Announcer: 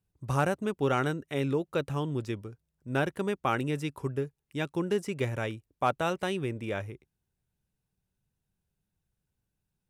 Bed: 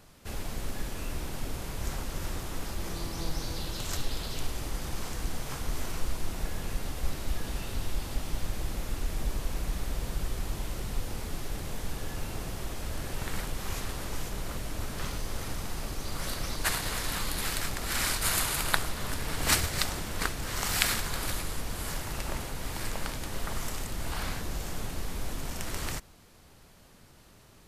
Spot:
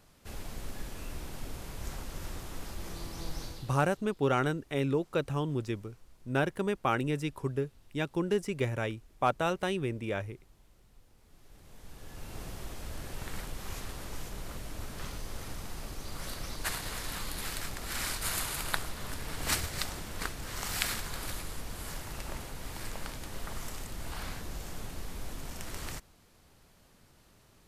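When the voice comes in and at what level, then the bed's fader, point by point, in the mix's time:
3.40 s, -0.5 dB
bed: 3.44 s -5.5 dB
4.03 s -27.5 dB
11.15 s -27.5 dB
12.41 s -5.5 dB

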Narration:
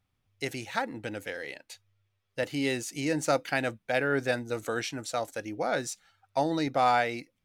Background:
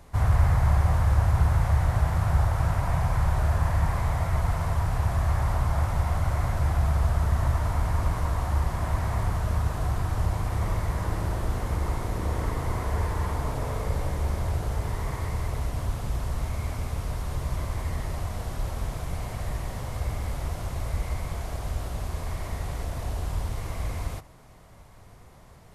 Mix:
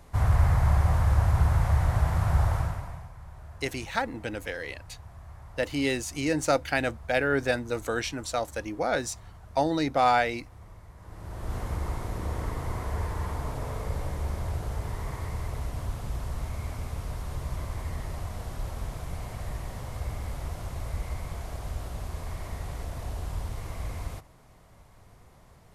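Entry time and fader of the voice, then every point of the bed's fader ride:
3.20 s, +2.0 dB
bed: 2.55 s -1 dB
3.13 s -21.5 dB
10.96 s -21.5 dB
11.55 s -4 dB

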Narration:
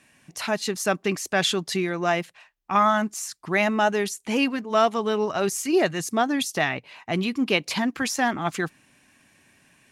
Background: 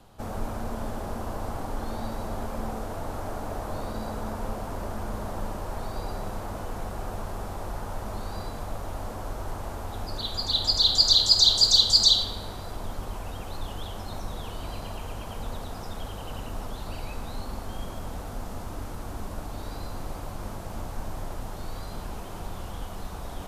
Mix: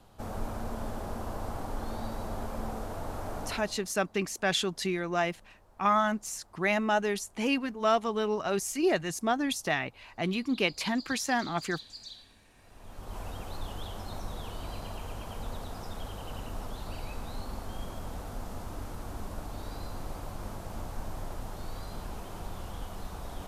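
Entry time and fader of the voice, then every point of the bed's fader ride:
3.10 s, -5.5 dB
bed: 3.46 s -3.5 dB
3.93 s -27.5 dB
12.49 s -27.5 dB
13.18 s -3.5 dB

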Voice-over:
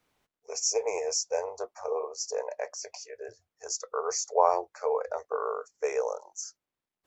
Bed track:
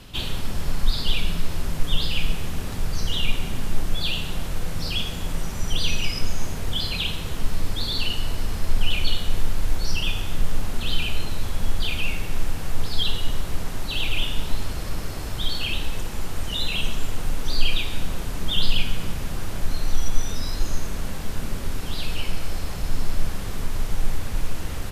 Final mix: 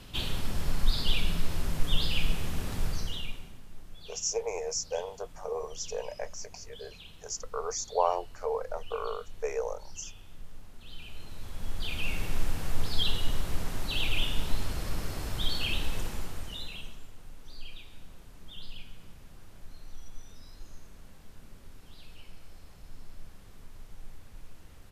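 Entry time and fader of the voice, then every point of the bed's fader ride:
3.60 s, -3.5 dB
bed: 2.87 s -4.5 dB
3.63 s -23.5 dB
10.77 s -23.5 dB
12.22 s -4.5 dB
16.06 s -4.5 dB
17.12 s -22.5 dB

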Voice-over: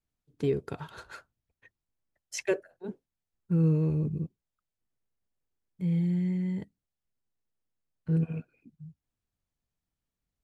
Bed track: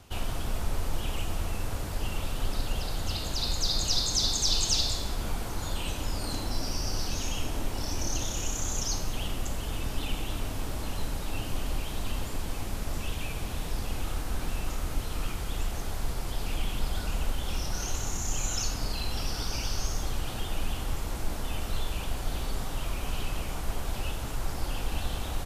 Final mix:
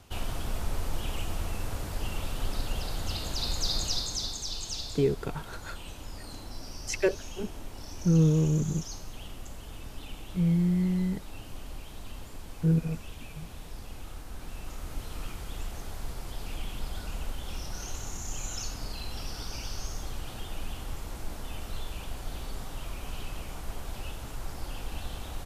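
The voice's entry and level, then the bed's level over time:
4.55 s, +2.5 dB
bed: 3.76 s -1.5 dB
4.48 s -10 dB
14.31 s -10 dB
15.05 s -5.5 dB

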